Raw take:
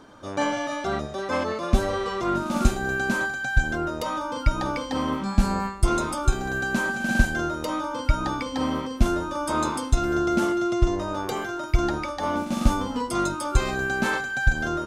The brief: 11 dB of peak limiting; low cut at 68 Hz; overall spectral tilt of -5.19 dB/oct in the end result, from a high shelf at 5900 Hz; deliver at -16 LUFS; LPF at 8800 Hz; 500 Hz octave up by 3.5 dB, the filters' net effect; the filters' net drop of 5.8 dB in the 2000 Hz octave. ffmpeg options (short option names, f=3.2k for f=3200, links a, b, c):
-af "highpass=68,lowpass=8.8k,equalizer=f=500:t=o:g=5.5,equalizer=f=2k:t=o:g=-8.5,highshelf=f=5.9k:g=-7.5,volume=12dB,alimiter=limit=-6.5dB:level=0:latency=1"